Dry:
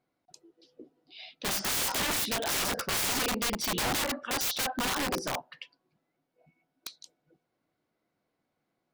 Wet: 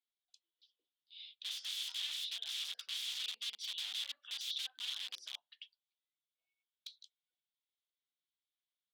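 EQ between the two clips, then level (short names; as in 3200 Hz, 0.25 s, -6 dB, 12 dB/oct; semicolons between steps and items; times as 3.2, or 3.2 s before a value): band-pass 3400 Hz, Q 6.1; tilt +3.5 dB/oct; -6.0 dB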